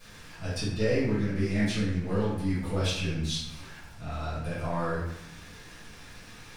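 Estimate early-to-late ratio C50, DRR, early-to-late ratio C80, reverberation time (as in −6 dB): −0.5 dB, −14.5 dB, 3.5 dB, 0.80 s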